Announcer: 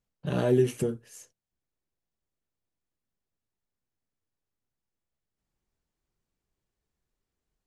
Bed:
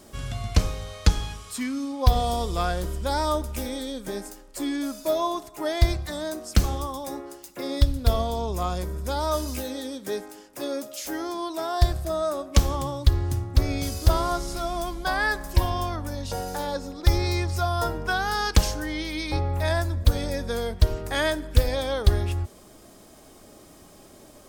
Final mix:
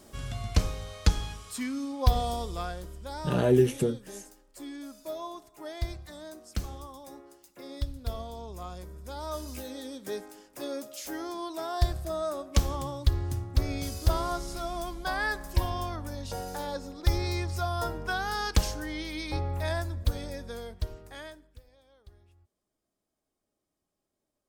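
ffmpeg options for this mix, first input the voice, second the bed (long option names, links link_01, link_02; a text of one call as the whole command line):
ffmpeg -i stem1.wav -i stem2.wav -filter_complex "[0:a]adelay=3000,volume=1.5dB[link_01];[1:a]volume=3.5dB,afade=type=out:start_time=2.08:duration=0.8:silence=0.354813,afade=type=in:start_time=9.04:duration=1.02:silence=0.421697,afade=type=out:start_time=19.51:duration=2.09:silence=0.0334965[link_02];[link_01][link_02]amix=inputs=2:normalize=0" out.wav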